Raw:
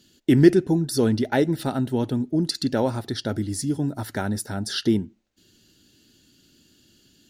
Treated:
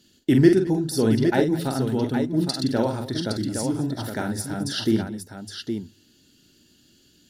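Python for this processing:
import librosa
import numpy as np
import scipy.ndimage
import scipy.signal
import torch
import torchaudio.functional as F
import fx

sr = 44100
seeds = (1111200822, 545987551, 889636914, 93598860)

p1 = fx.hum_notches(x, sr, base_hz=50, count=2)
p2 = p1 + fx.echo_multitap(p1, sr, ms=(45, 216, 815), db=(-6.0, -17.5, -6.5), dry=0)
y = p2 * librosa.db_to_amplitude(-1.5)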